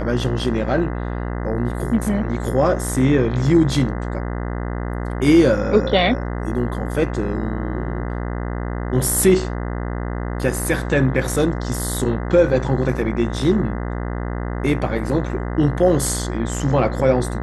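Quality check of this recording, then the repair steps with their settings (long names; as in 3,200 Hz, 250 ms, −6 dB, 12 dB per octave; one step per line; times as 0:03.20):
mains buzz 60 Hz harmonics 34 −25 dBFS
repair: hum removal 60 Hz, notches 34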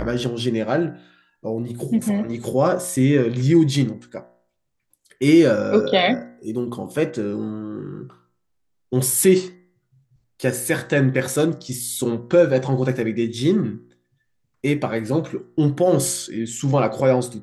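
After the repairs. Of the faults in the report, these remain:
none of them is left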